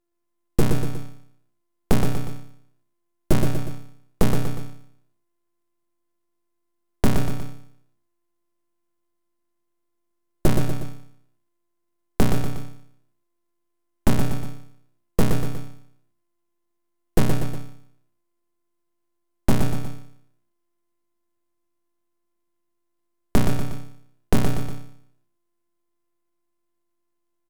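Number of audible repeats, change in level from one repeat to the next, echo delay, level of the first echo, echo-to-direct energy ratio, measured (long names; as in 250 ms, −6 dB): 3, −6.0 dB, 120 ms, −5.5 dB, −4.5 dB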